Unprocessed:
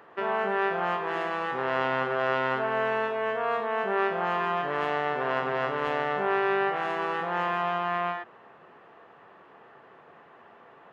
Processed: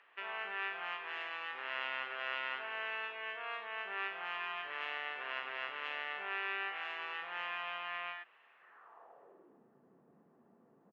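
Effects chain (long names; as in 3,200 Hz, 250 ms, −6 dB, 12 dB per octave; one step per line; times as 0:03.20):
pitch-shifted copies added −5 semitones −16 dB
band-pass filter sweep 2,600 Hz → 210 Hz, 0:08.52–0:09.64
level −1 dB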